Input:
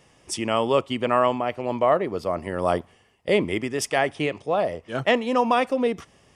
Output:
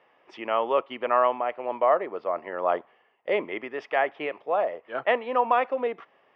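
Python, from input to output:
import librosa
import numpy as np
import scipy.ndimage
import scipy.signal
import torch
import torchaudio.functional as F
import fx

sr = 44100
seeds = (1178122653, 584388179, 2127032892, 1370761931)

y = fx.bandpass_edges(x, sr, low_hz=570.0, high_hz=2400.0)
y = fx.air_absorb(y, sr, metres=260.0)
y = y * librosa.db_to_amplitude(1.5)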